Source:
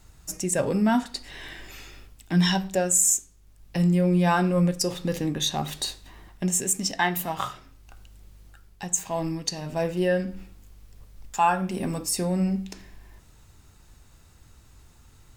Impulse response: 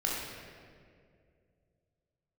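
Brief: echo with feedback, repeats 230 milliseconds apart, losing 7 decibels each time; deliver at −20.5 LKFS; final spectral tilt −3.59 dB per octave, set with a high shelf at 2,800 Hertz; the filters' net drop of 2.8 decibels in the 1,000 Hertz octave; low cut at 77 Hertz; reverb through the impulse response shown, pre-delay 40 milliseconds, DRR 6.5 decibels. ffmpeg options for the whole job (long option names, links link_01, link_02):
-filter_complex "[0:a]highpass=77,equalizer=frequency=1000:width_type=o:gain=-4,highshelf=frequency=2800:gain=3,aecho=1:1:230|460|690|920|1150:0.447|0.201|0.0905|0.0407|0.0183,asplit=2[link_01][link_02];[1:a]atrim=start_sample=2205,adelay=40[link_03];[link_02][link_03]afir=irnorm=-1:irlink=0,volume=-13.5dB[link_04];[link_01][link_04]amix=inputs=2:normalize=0,volume=2.5dB"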